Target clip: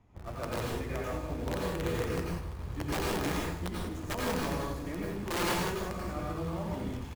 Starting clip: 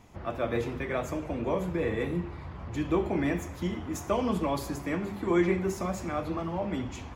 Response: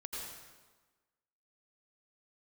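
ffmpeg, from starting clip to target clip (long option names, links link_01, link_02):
-filter_complex "[0:a]highshelf=frequency=3500:gain=-11.5,acrossover=split=150[link_01][link_02];[link_01]acontrast=57[link_03];[link_03][link_02]amix=inputs=2:normalize=0,aeval=exprs='(mod(9.44*val(0)+1,2)-1)/9.44':channel_layout=same,asplit=2[link_04][link_05];[link_05]acrusher=bits=3:dc=4:mix=0:aa=0.000001,volume=-4dB[link_06];[link_04][link_06]amix=inputs=2:normalize=0,aecho=1:1:152:0.188[link_07];[1:a]atrim=start_sample=2205,afade=type=out:start_time=0.26:duration=0.01,atrim=end_sample=11907[link_08];[link_07][link_08]afir=irnorm=-1:irlink=0,volume=-6dB"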